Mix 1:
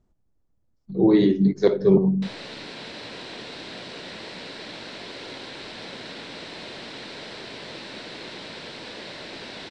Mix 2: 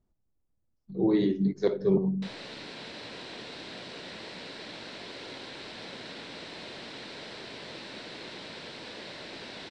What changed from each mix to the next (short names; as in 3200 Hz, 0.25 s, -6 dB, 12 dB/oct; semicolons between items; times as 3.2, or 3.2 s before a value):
speech -7.5 dB; background -4.5 dB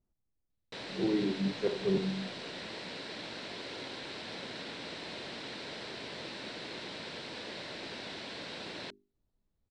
speech -6.0 dB; background: entry -1.50 s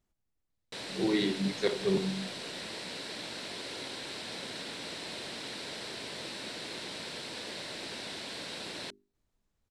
speech: add bell 2600 Hz +13.5 dB 2.3 oct; master: remove air absorption 110 m